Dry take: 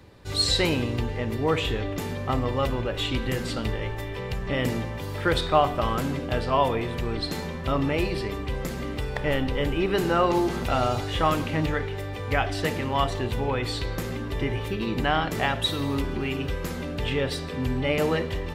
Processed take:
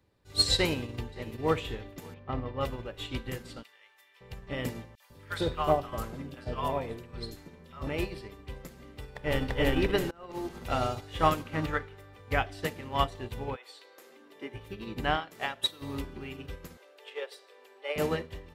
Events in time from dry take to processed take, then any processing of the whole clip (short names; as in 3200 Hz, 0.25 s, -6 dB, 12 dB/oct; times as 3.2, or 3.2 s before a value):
0.55–1.62 echo throw 0.57 s, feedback 15%, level -13 dB
2.14–2.61 air absorption 250 m
3.63–4.21 HPF 1400 Hz
4.95–7.87 three bands offset in time highs, mids, lows 50/150 ms, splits 820/3000 Hz
8.96–9.57 echo throw 0.34 s, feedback 40%, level -0.5 dB
10.11–10.58 fade in linear, from -20 dB
11.45–12.21 bell 1300 Hz +7.5 dB 0.66 oct
13.55–14.53 HPF 580 Hz -> 210 Hz 24 dB/oct
15.16–15.82 HPF 390 Hz 6 dB/oct
16.77–17.96 steep high-pass 390 Hz 48 dB/oct
whole clip: high shelf 9200 Hz +5.5 dB; upward expander 2.5:1, over -32 dBFS